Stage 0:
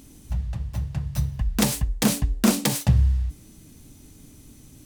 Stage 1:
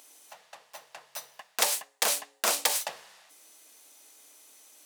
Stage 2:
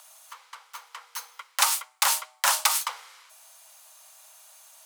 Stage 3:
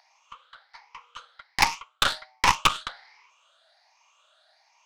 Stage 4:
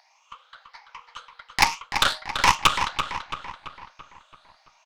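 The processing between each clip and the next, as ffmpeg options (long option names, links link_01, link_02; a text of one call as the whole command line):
ffmpeg -i in.wav -af "highpass=frequency=570:width=0.5412,highpass=frequency=570:width=1.3066" out.wav
ffmpeg -i in.wav -af "equalizer=frequency=1000:width_type=o:width=0.25:gain=2,afreqshift=340,lowshelf=frequency=500:gain=11,volume=3dB" out.wav
ffmpeg -i in.wav -af "afftfilt=real='re*pow(10,16/40*sin(2*PI*(0.76*log(max(b,1)*sr/1024/100)/log(2)-(1.3)*(pts-256)/sr)))':imag='im*pow(10,16/40*sin(2*PI*(0.76*log(max(b,1)*sr/1024/100)/log(2)-(1.3)*(pts-256)/sr)))':win_size=1024:overlap=0.75,lowpass=frequency=4600:width=0.5412,lowpass=frequency=4600:width=1.3066,aeval=exprs='0.531*(cos(1*acos(clip(val(0)/0.531,-1,1)))-cos(1*PI/2))+0.106*(cos(6*acos(clip(val(0)/0.531,-1,1)))-cos(6*PI/2))+0.0473*(cos(7*acos(clip(val(0)/0.531,-1,1)))-cos(7*PI/2))+0.0473*(cos(8*acos(clip(val(0)/0.531,-1,1)))-cos(8*PI/2))':channel_layout=same,volume=2dB" out.wav
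ffmpeg -i in.wav -filter_complex "[0:a]asplit=2[link_01][link_02];[link_02]adelay=335,lowpass=frequency=4100:poles=1,volume=-7dB,asplit=2[link_03][link_04];[link_04]adelay=335,lowpass=frequency=4100:poles=1,volume=0.52,asplit=2[link_05][link_06];[link_06]adelay=335,lowpass=frequency=4100:poles=1,volume=0.52,asplit=2[link_07][link_08];[link_08]adelay=335,lowpass=frequency=4100:poles=1,volume=0.52,asplit=2[link_09][link_10];[link_10]adelay=335,lowpass=frequency=4100:poles=1,volume=0.52,asplit=2[link_11][link_12];[link_12]adelay=335,lowpass=frequency=4100:poles=1,volume=0.52[link_13];[link_01][link_03][link_05][link_07][link_09][link_11][link_13]amix=inputs=7:normalize=0,volume=2dB" out.wav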